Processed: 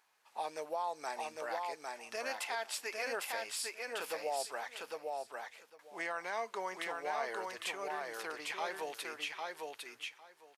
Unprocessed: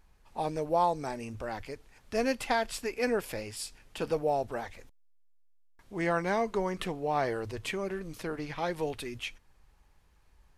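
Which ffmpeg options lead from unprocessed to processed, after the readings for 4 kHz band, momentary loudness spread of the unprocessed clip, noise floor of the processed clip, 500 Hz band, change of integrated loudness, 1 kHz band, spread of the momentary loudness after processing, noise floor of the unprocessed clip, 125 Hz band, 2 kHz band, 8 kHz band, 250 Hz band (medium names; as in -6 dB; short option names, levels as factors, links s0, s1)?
-0.5 dB, 11 LU, -65 dBFS, -9.0 dB, -7.0 dB, -5.5 dB, 8 LU, -64 dBFS, under -25 dB, -2.0 dB, +0.5 dB, -18.0 dB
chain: -af "highpass=790,alimiter=level_in=1.58:limit=0.0631:level=0:latency=1:release=126,volume=0.631,aecho=1:1:804|1608|2412:0.708|0.106|0.0159"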